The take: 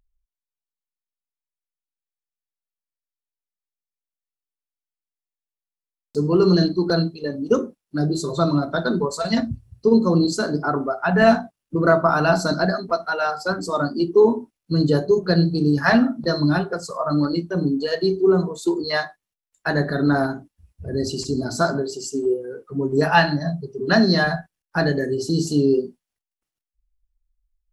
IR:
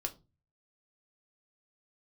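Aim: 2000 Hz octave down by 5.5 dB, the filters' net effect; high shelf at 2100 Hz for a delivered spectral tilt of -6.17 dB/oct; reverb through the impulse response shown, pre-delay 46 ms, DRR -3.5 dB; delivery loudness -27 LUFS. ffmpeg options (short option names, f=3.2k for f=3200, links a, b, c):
-filter_complex "[0:a]equalizer=f=2k:t=o:g=-6,highshelf=f=2.1k:g=-3.5,asplit=2[a][b];[1:a]atrim=start_sample=2205,adelay=46[c];[b][c]afir=irnorm=-1:irlink=0,volume=3dB[d];[a][d]amix=inputs=2:normalize=0,volume=-11dB"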